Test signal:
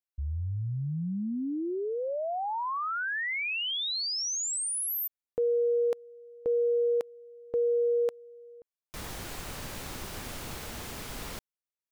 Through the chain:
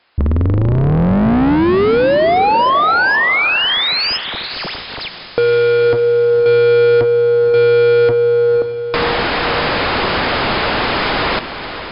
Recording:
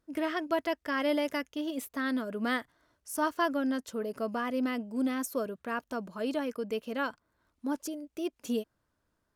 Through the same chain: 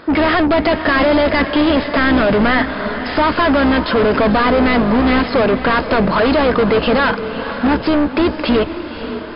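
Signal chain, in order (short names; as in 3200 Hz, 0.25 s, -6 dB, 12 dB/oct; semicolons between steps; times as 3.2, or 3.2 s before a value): octaver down 2 oct, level 0 dB; recorder AGC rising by 6.7 dB/s; overdrive pedal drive 39 dB, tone 1800 Hz, clips at -15.5 dBFS; in parallel at +3 dB: compressor, threshold -32 dBFS; on the sum: brick-wall FIR low-pass 5200 Hz; on a send: diffused feedback echo 0.532 s, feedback 43%, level -10 dB; on the sum: gain +6 dB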